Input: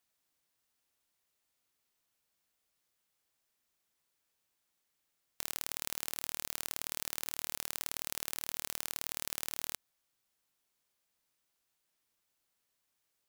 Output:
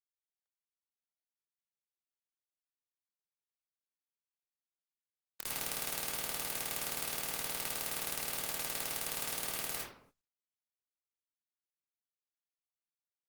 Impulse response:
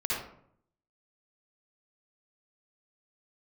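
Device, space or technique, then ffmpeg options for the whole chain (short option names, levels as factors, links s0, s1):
speakerphone in a meeting room: -filter_complex "[1:a]atrim=start_sample=2205[s0];[0:a][s0]afir=irnorm=-1:irlink=0,dynaudnorm=f=160:g=5:m=2.66,agate=range=0.0355:threshold=0.00158:ratio=16:detection=peak,volume=0.422" -ar 48000 -c:a libopus -b:a 20k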